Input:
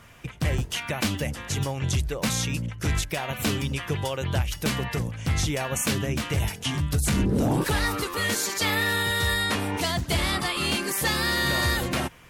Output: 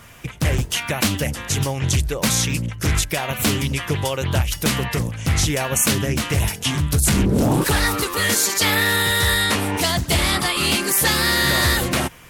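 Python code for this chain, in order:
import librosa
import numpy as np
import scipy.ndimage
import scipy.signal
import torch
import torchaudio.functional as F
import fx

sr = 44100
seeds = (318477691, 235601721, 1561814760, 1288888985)

y = fx.high_shelf(x, sr, hz=7300.0, db=9.0)
y = fx.doppler_dist(y, sr, depth_ms=0.24)
y = y * librosa.db_to_amplitude(5.5)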